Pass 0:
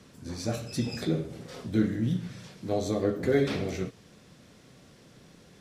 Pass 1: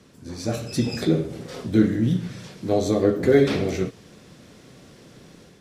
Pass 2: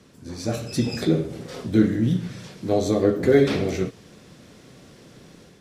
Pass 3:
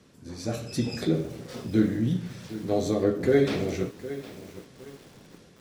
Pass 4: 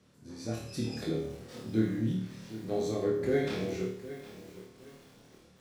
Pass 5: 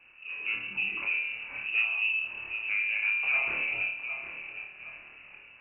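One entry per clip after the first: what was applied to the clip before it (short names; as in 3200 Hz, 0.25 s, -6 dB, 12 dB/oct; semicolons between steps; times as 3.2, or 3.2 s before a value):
AGC gain up to 6 dB; bell 360 Hz +3 dB 0.92 oct
nothing audible
lo-fi delay 0.761 s, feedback 35%, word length 6-bit, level -14 dB; gain -4.5 dB
flutter echo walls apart 4.6 m, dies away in 0.48 s; gain -8.5 dB
in parallel at +2 dB: compressor, threshold -39 dBFS, peak gain reduction 16 dB; on the sum: soft clip -20 dBFS, distortion -18 dB; inverted band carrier 2800 Hz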